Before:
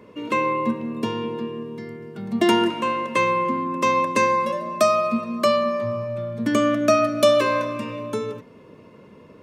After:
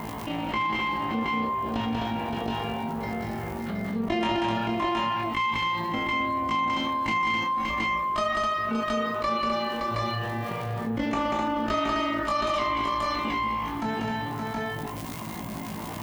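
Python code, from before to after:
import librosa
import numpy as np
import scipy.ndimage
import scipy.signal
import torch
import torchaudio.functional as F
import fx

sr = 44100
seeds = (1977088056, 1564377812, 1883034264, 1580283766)

y = fx.lower_of_two(x, sr, delay_ms=0.98)
y = scipy.signal.sosfilt(scipy.signal.butter(2, 45.0, 'highpass', fs=sr, output='sos'), y)
y = fx.dereverb_blind(y, sr, rt60_s=1.7)
y = scipy.signal.sosfilt(scipy.signal.butter(2, 5400.0, 'lowpass', fs=sr, output='sos'), y)
y = fx.bass_treble(y, sr, bass_db=0, treble_db=-5)
y = fx.dmg_crackle(y, sr, seeds[0], per_s=48.0, level_db=-40.0)
y = fx.stretch_grains(y, sr, factor=1.7, grain_ms=88.0)
y = fx.dmg_noise_colour(y, sr, seeds[1], colour='violet', level_db=-69.0)
y = fx.echo_multitap(y, sr, ms=(190, 257, 570, 721, 742), db=(-3.5, -5.5, -10.5, -5.0, -9.5))
y = fx.env_flatten(y, sr, amount_pct=70)
y = y * 10.0 ** (-8.0 / 20.0)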